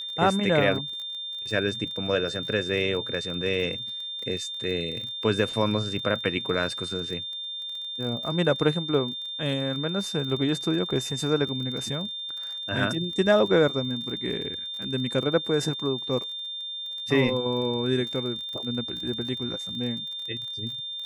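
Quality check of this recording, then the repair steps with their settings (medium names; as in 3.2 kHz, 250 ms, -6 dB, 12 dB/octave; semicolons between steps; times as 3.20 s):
crackle 28 per s -34 dBFS
whine 3.6 kHz -32 dBFS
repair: de-click; band-stop 3.6 kHz, Q 30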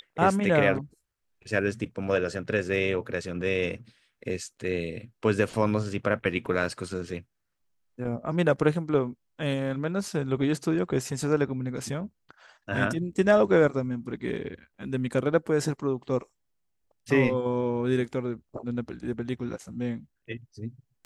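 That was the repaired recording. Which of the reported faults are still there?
nothing left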